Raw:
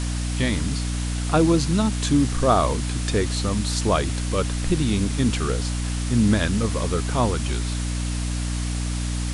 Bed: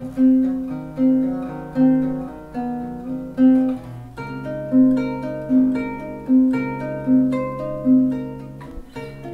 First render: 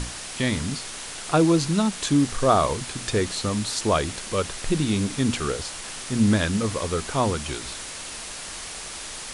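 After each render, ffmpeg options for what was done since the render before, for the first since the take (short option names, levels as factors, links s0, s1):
-af "bandreject=f=60:t=h:w=6,bandreject=f=120:t=h:w=6,bandreject=f=180:t=h:w=6,bandreject=f=240:t=h:w=6,bandreject=f=300:t=h:w=6"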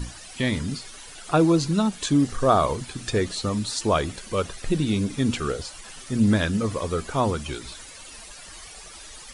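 -af "afftdn=nr=13:nf=-36"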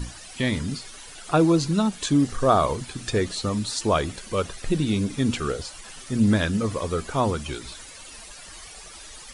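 -af anull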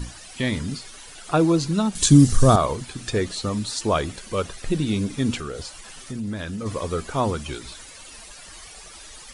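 -filter_complex "[0:a]asettb=1/sr,asplit=3[s0][s1][s2];[s0]atrim=end=1.954[s3];[s1]atrim=start=1.95:end=2.56,asetpts=PTS-STARTPTS,afade=t=in:d=0.004:c=qsin,afade=t=out:st=0.606:d=0.004:c=qsin,bass=f=250:g=14,treble=f=4000:g=13[s4];[s2]atrim=start=2.556[s5];[s3][s4]acrossfade=d=0.004:c1=hsin:c2=qsin[s6];[s6][s5]acrossfade=d=0.004:c1=qsin:c2=hsin,asplit=3[s7][s8][s9];[s7]afade=t=out:st=5.38:d=0.02[s10];[s8]acompressor=threshold=0.0398:ratio=4:attack=3.2:release=140:knee=1:detection=peak,afade=t=in:st=5.38:d=0.02,afade=t=out:st=6.65:d=0.02[s11];[s9]afade=t=in:st=6.65:d=0.02[s12];[s10][s11][s12]amix=inputs=3:normalize=0"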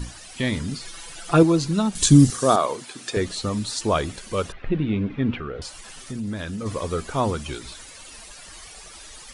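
-filter_complex "[0:a]asettb=1/sr,asplit=3[s0][s1][s2];[s0]atrim=end=0.804[s3];[s1]atrim=start=0.8:end=1.43,asetpts=PTS-STARTPTS,afade=t=in:d=0.004:c=qsin,afade=t=out:st=0.626:d=0.004:c=qsin,aecho=1:1:5.9:0.97,atrim=end_sample=27783[s4];[s2]atrim=start=1.426[s5];[s3][s4]acrossfade=d=0.004:c1=hsin:c2=qsin[s6];[s6][s5]acrossfade=d=0.004:c1=qsin:c2=hsin,asettb=1/sr,asplit=3[s7][s8][s9];[s7]atrim=end=2.304[s10];[s8]atrim=start=2.3:end=3.17,asetpts=PTS-STARTPTS,afade=t=in:d=0.004:c=qsin,afade=t=out:st=0.866:d=0.004:c=qsin,highpass=300[s11];[s9]atrim=start=3.166[s12];[s10][s11]acrossfade=d=0.004:c1=hsin:c2=qsin[s13];[s13][s12]acrossfade=d=0.004:c1=qsin:c2=hsin,asettb=1/sr,asplit=3[s14][s15][s16];[s14]atrim=end=4.524[s17];[s15]atrim=start=4.52:end=5.62,asetpts=PTS-STARTPTS,afade=t=in:d=0.004:c=qsin,afade=t=out:st=1.096:d=0.004:c=qsin,lowpass=f=2700:w=0.5412,lowpass=f=2700:w=1.3066[s18];[s16]atrim=start=5.616[s19];[s17][s18]acrossfade=d=0.004:c1=hsin:c2=qsin[s20];[s20][s19]acrossfade=d=0.004:c1=qsin:c2=hsin"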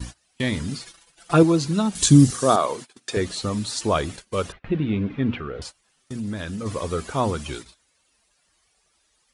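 -af "agate=range=0.0631:threshold=0.0178:ratio=16:detection=peak,highpass=43"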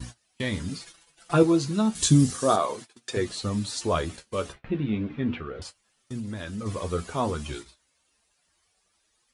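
-af "flanger=delay=7.8:depth=7.4:regen=48:speed=0.32:shape=triangular"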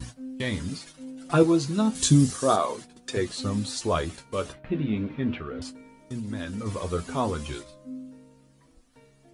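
-filter_complex "[1:a]volume=0.0631[s0];[0:a][s0]amix=inputs=2:normalize=0"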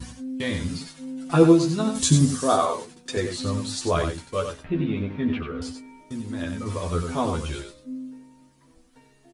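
-filter_complex "[0:a]asplit=2[s0][s1];[s1]adelay=12,volume=0.631[s2];[s0][s2]amix=inputs=2:normalize=0,aecho=1:1:92:0.447"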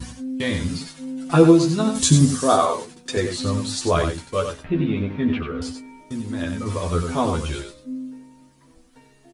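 -af "volume=1.5,alimiter=limit=0.708:level=0:latency=1"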